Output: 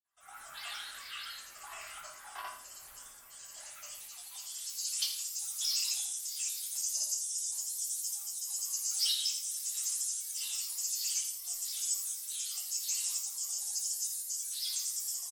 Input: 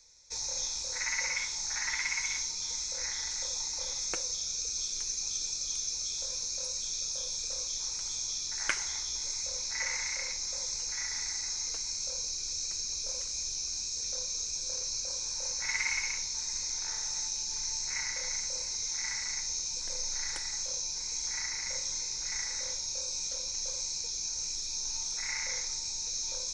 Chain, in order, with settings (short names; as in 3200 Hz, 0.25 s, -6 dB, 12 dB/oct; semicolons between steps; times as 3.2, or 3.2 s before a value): opening faded in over 0.74 s; soft clip -19.5 dBFS, distortion -28 dB; tremolo saw up 0.57 Hz, depth 40%; grains, pitch spread up and down by 7 st; band-pass sweep 840 Hz -> 3300 Hz, 5.62–8.8; on a send: feedback echo 97 ms, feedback 36%, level -12 dB; on the sum: shoebox room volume 44 m³, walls mixed, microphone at 2 m; speed mistake 45 rpm record played at 78 rpm; lo-fi delay 82 ms, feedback 35%, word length 10-bit, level -10 dB